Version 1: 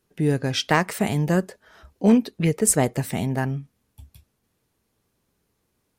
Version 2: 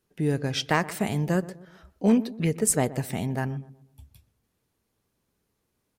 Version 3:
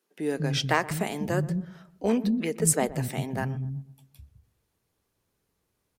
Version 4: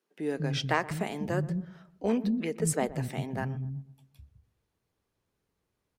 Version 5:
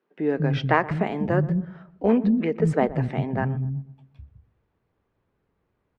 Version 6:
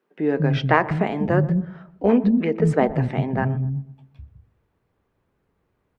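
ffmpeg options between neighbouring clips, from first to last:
ffmpeg -i in.wav -filter_complex "[0:a]asplit=2[link_01][link_02];[link_02]adelay=124,lowpass=frequency=1000:poles=1,volume=-16dB,asplit=2[link_03][link_04];[link_04]adelay=124,lowpass=frequency=1000:poles=1,volume=0.43,asplit=2[link_05][link_06];[link_06]adelay=124,lowpass=frequency=1000:poles=1,volume=0.43,asplit=2[link_07][link_08];[link_08]adelay=124,lowpass=frequency=1000:poles=1,volume=0.43[link_09];[link_01][link_03][link_05][link_07][link_09]amix=inputs=5:normalize=0,volume=-4dB" out.wav
ffmpeg -i in.wav -filter_complex "[0:a]acrossover=split=230[link_01][link_02];[link_01]adelay=200[link_03];[link_03][link_02]amix=inputs=2:normalize=0" out.wav
ffmpeg -i in.wav -af "highshelf=frequency=6900:gain=-9.5,volume=-3dB" out.wav
ffmpeg -i in.wav -af "lowpass=2000,volume=8dB" out.wav
ffmpeg -i in.wav -af "bandreject=frequency=109.2:width_type=h:width=4,bandreject=frequency=218.4:width_type=h:width=4,bandreject=frequency=327.6:width_type=h:width=4,bandreject=frequency=436.8:width_type=h:width=4,bandreject=frequency=546:width_type=h:width=4,bandreject=frequency=655.2:width_type=h:width=4,bandreject=frequency=764.4:width_type=h:width=4,bandreject=frequency=873.6:width_type=h:width=4,bandreject=frequency=982.8:width_type=h:width=4,volume=3dB" out.wav

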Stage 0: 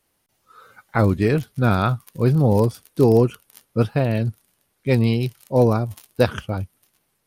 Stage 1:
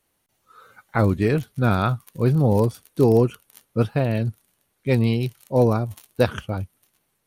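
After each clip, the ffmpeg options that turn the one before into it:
ffmpeg -i in.wav -af "bandreject=frequency=5000:width=12,volume=-1.5dB" out.wav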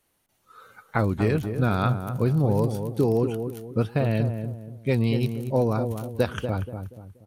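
ffmpeg -i in.wav -filter_complex "[0:a]acompressor=threshold=-19dB:ratio=4,asplit=2[link_01][link_02];[link_02]adelay=239,lowpass=frequency=980:poles=1,volume=-7dB,asplit=2[link_03][link_04];[link_04]adelay=239,lowpass=frequency=980:poles=1,volume=0.38,asplit=2[link_05][link_06];[link_06]adelay=239,lowpass=frequency=980:poles=1,volume=0.38,asplit=2[link_07][link_08];[link_08]adelay=239,lowpass=frequency=980:poles=1,volume=0.38[link_09];[link_03][link_05][link_07][link_09]amix=inputs=4:normalize=0[link_10];[link_01][link_10]amix=inputs=2:normalize=0" out.wav

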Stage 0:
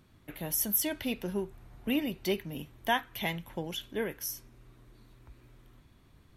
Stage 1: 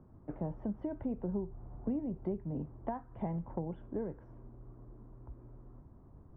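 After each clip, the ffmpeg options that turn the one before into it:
ffmpeg -i in.wav -filter_complex "[0:a]lowpass=frequency=1000:width=0.5412,lowpass=frequency=1000:width=1.3066,acrossover=split=160[link_01][link_02];[link_02]acompressor=threshold=-40dB:ratio=10[link_03];[link_01][link_03]amix=inputs=2:normalize=0,volume=4.5dB" out.wav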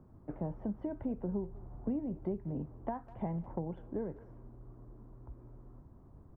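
ffmpeg -i in.wav -filter_complex "[0:a]asplit=2[link_01][link_02];[link_02]adelay=200,highpass=300,lowpass=3400,asoftclip=type=hard:threshold=-31.5dB,volume=-18dB[link_03];[link_01][link_03]amix=inputs=2:normalize=0" out.wav

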